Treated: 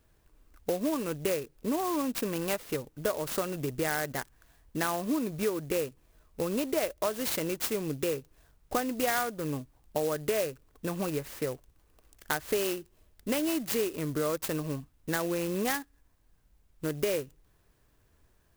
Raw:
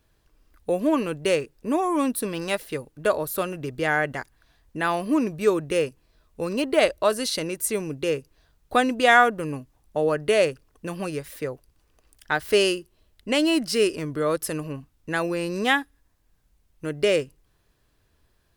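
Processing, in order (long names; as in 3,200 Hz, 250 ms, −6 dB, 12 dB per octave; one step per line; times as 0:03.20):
downward compressor 5 to 1, threshold −27 dBFS, peak gain reduction 14.5 dB
converter with an unsteady clock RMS 0.065 ms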